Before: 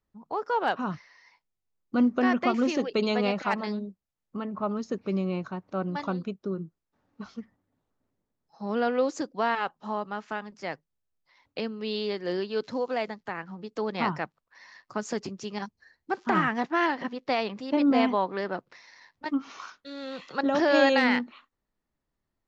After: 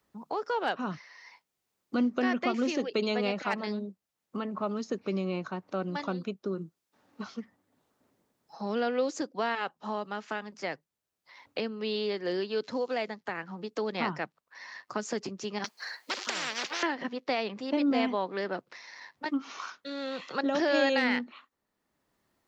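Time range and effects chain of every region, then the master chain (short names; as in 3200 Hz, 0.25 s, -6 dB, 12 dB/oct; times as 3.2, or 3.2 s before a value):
15.64–16.83 HPF 880 Hz + bell 4500 Hz +4.5 dB 0.29 oct + spectral compressor 10:1
whole clip: HPF 240 Hz 6 dB/oct; dynamic EQ 1000 Hz, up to -5 dB, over -39 dBFS, Q 1.2; three-band squash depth 40%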